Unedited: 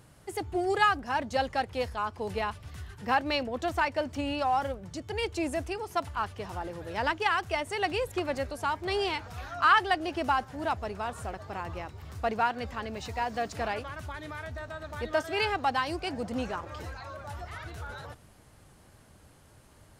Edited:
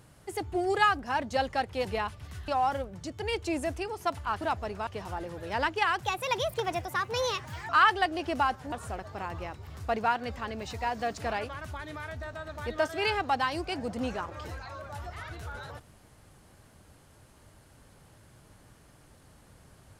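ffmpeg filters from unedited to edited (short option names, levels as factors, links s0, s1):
-filter_complex "[0:a]asplit=8[s0][s1][s2][s3][s4][s5][s6][s7];[s0]atrim=end=1.852[s8];[s1]atrim=start=2.278:end=2.912[s9];[s2]atrim=start=4.378:end=6.312[s10];[s3]atrim=start=10.608:end=11.072[s11];[s4]atrim=start=6.308:end=7.474[s12];[s5]atrim=start=7.47:end=9.58,asetpts=PTS-STARTPTS,asetrate=56007,aresample=44100[s13];[s6]atrim=start=9.576:end=10.612[s14];[s7]atrim=start=11.068[s15];[s8][s9]acrossfade=d=0.004:c1=hsin:c2=hsin[s16];[s16][s10]acrossfade=d=0.004:c1=hsin:c2=hsin[s17];[s17][s11]acrossfade=d=0.004:c1=hsin:c2=hsin[s18];[s18][s12]acrossfade=d=0.004:c1=hsin:c2=hsin[s19];[s19][s13]acrossfade=d=0.004:c1=hsin:c2=hsin[s20];[s20][s14]acrossfade=d=0.004:c1=hsin:c2=hsin[s21];[s21][s15]acrossfade=d=0.004:c1=hsin:c2=hsin"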